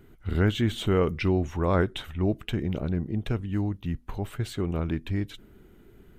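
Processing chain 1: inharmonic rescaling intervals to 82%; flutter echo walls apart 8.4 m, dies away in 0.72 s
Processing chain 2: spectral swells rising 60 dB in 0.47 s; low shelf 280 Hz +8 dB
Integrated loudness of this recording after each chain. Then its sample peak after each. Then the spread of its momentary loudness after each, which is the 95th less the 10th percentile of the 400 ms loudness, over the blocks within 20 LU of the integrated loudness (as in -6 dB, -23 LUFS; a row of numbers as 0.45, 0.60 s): -27.5, -22.5 LUFS; -8.5, -4.0 dBFS; 8, 6 LU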